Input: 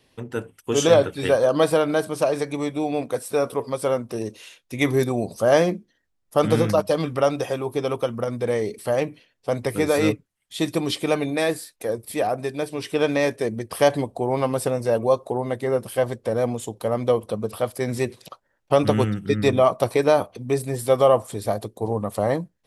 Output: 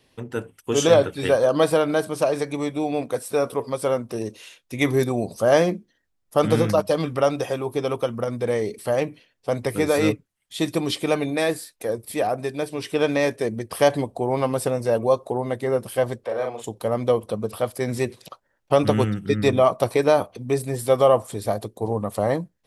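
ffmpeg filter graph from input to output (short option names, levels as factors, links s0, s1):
-filter_complex "[0:a]asettb=1/sr,asplit=3[s0][s1][s2];[s0]atrim=end=16.244[s3];[s1]atrim=start=16.24:end=16.64,asetpts=PTS-STARTPTS,afade=t=in:d=0.004:c=qsin,afade=t=out:st=0.396:d=0.004:c=qsin,acrossover=split=460 4000:gain=0.158 1 0.224[s4][s5][s6];[s4][s5][s6]amix=inputs=3:normalize=0,asplit=2[s7][s8];[s8]adelay=39,volume=0.631[s9];[s7][s9]amix=inputs=2:normalize=0,atrim=end_sample=17640[s10];[s2]atrim=start=16.636[s11];[s3][s10]acrossfade=d=0.004:c1=hsin:c2=qsin[s12];[s12][s11]acrossfade=d=0.004:c1=qsin:c2=hsin"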